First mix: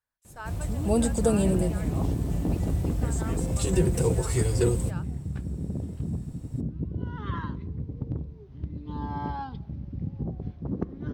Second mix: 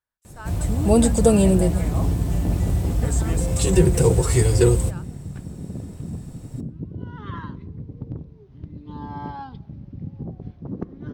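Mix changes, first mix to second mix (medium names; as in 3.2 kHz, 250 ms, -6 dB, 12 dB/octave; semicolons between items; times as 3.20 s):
first sound +7.5 dB; second sound: add peaking EQ 66 Hz -11.5 dB 0.27 oct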